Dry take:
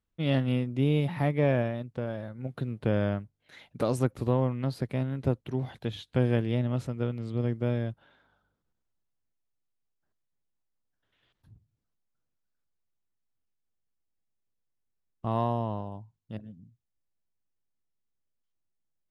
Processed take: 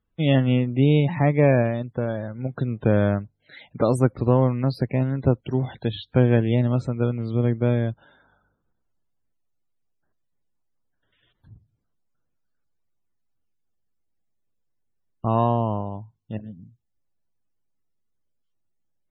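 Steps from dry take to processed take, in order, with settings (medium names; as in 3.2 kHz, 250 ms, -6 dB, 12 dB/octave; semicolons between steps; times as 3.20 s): loudest bins only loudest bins 64; trim +7.5 dB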